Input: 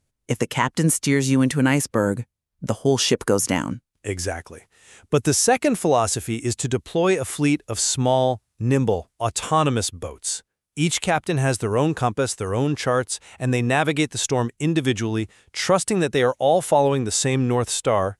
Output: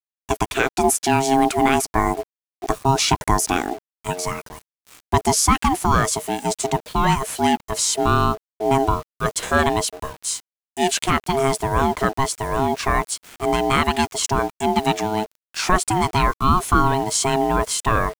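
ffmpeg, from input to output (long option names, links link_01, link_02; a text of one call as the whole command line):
ffmpeg -i in.wav -af "acrusher=bits=6:mix=0:aa=0.000001,aeval=exprs='val(0)*sin(2*PI*540*n/s)':channel_layout=same,volume=4dB" out.wav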